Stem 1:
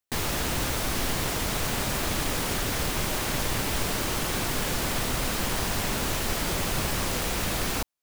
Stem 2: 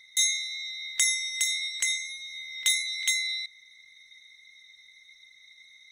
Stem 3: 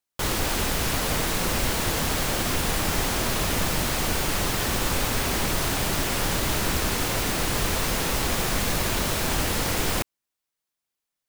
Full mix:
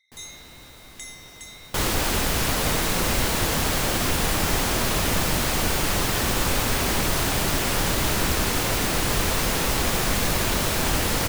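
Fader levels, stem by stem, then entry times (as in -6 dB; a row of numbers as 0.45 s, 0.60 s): -19.0 dB, -15.5 dB, +2.0 dB; 0.00 s, 0.00 s, 1.55 s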